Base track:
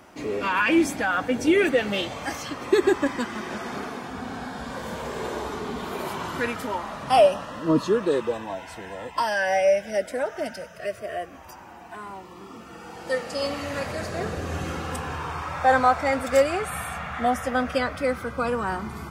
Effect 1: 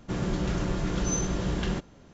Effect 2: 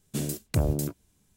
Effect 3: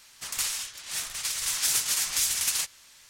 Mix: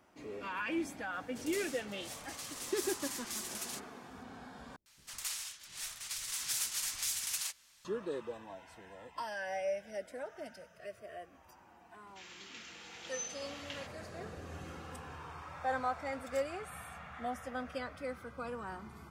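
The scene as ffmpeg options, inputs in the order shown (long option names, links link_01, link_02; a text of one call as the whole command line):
ffmpeg -i bed.wav -i cue0.wav -i cue1.wav -i cue2.wav -filter_complex "[3:a]asplit=2[link_01][link_02];[0:a]volume=-16dB[link_03];[link_02]acrossover=split=420[link_04][link_05];[link_05]adelay=100[link_06];[link_04][link_06]amix=inputs=2:normalize=0[link_07];[1:a]highpass=frequency=2400:width_type=q:width=1.8[link_08];[link_03]asplit=2[link_09][link_10];[link_09]atrim=end=4.764[link_11];[link_07]atrim=end=3.09,asetpts=PTS-STARTPTS,volume=-10dB[link_12];[link_10]atrim=start=7.846[link_13];[link_01]atrim=end=3.09,asetpts=PTS-STARTPTS,volume=-15.5dB,afade=type=in:duration=0.004:curve=hsin,afade=type=out:start_time=3.086:duration=0.004:curve=hsin,adelay=1140[link_14];[link_08]atrim=end=2.13,asetpts=PTS-STARTPTS,volume=-10.5dB,afade=type=in:duration=0.004:curve=hsin,afade=type=out:start_time=2.126:duration=0.004:curve=hsin,adelay=12070[link_15];[link_11][link_12]acrossfade=duration=0.004:curve1=hsin:curve2=hsin[link_16];[link_16][link_13]acrossfade=duration=0.004:curve1=hsin:curve2=hsin[link_17];[link_17][link_14][link_15]amix=inputs=3:normalize=0" out.wav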